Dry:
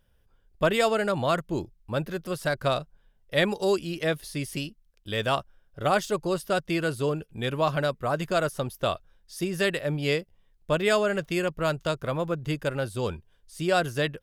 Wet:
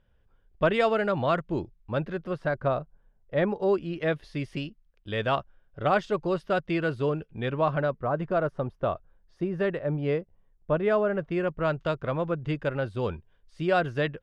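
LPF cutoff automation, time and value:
2.04 s 2800 Hz
2.69 s 1300 Hz
3.45 s 1300 Hz
4.22 s 2700 Hz
7.3 s 2700 Hz
8.15 s 1300 Hz
11.15 s 1300 Hz
11.82 s 2600 Hz

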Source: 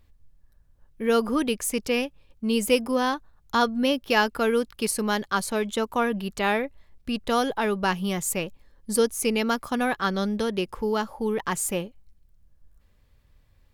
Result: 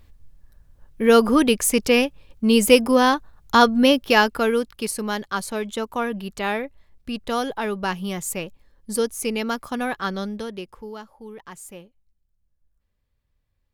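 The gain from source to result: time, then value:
3.87 s +7.5 dB
4.91 s -1 dB
10.11 s -1 dB
11.1 s -13 dB

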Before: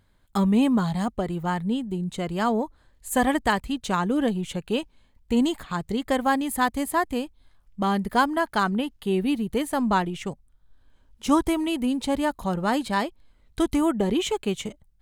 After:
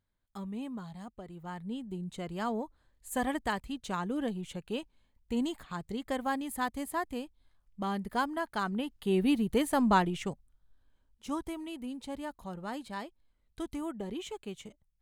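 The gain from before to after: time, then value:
1.22 s -19 dB
1.9 s -10 dB
8.61 s -10 dB
9.26 s -2.5 dB
10.13 s -2.5 dB
11.29 s -15 dB

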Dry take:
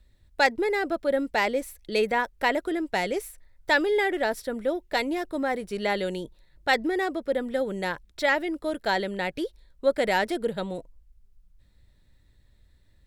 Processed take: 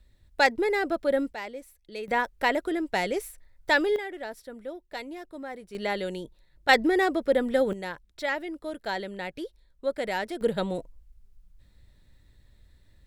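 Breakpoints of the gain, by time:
0 dB
from 1.33 s -12.5 dB
from 2.08 s -0.5 dB
from 3.96 s -11 dB
from 5.75 s -3 dB
from 6.69 s +3.5 dB
from 7.73 s -6 dB
from 10.41 s +2.5 dB

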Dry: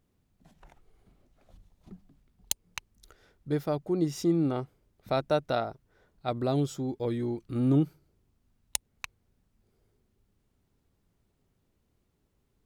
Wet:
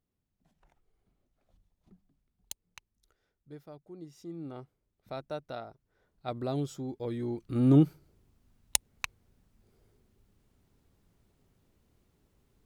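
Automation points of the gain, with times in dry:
2.65 s -12 dB
3.62 s -19 dB
4.2 s -19 dB
4.6 s -11.5 dB
5.62 s -11.5 dB
6.27 s -5 dB
7.07 s -5 dB
7.84 s +4 dB

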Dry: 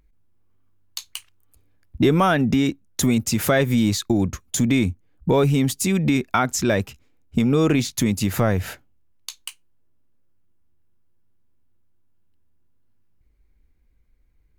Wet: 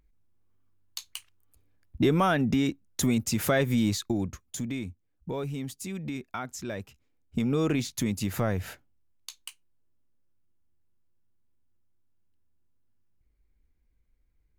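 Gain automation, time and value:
3.88 s -6 dB
4.83 s -15.5 dB
6.75 s -15.5 dB
7.45 s -8 dB

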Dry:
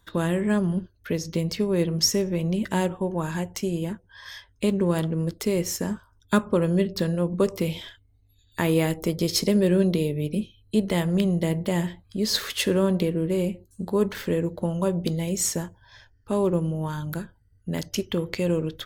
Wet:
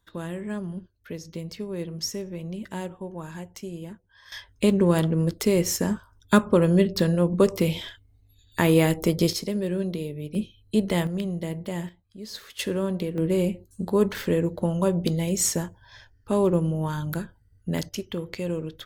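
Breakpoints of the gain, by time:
-9 dB
from 4.32 s +3 dB
from 9.33 s -7 dB
from 10.35 s 0 dB
from 11.07 s -6.5 dB
from 11.89 s -14 dB
from 12.59 s -5 dB
from 13.18 s +1.5 dB
from 17.89 s -5 dB

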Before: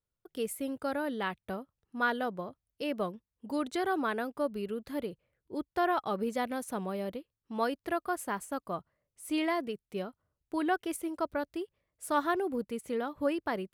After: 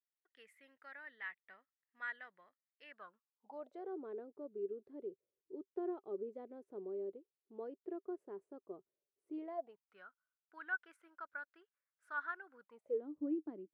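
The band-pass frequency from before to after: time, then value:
band-pass, Q 9
2.88 s 1900 Hz
4.01 s 390 Hz
9.38 s 390 Hz
9.96 s 1500 Hz
12.6 s 1500 Hz
13.05 s 310 Hz

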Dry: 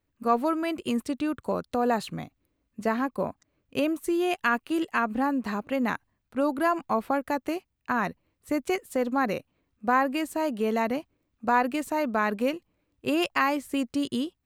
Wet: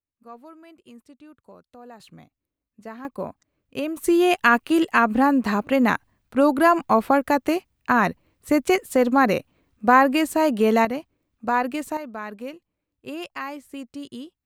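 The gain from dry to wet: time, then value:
-19 dB
from 2 s -11.5 dB
from 3.05 s -1.5 dB
from 3.97 s +8 dB
from 10.85 s +1 dB
from 11.97 s -8 dB

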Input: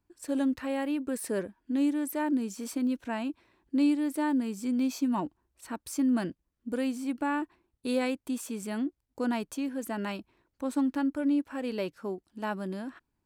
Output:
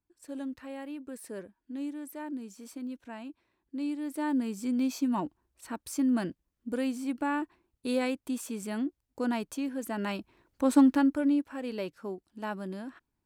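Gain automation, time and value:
3.8 s -9.5 dB
4.38 s -0.5 dB
9.9 s -0.5 dB
10.77 s +8 dB
11.54 s -2.5 dB

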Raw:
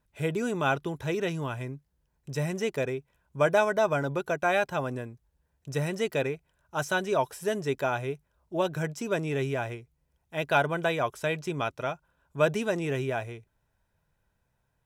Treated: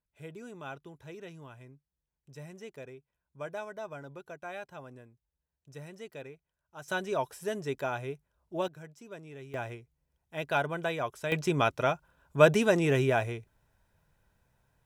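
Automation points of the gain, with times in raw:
-16 dB
from 6.88 s -5 dB
from 8.68 s -17 dB
from 9.54 s -5 dB
from 11.32 s +4 dB

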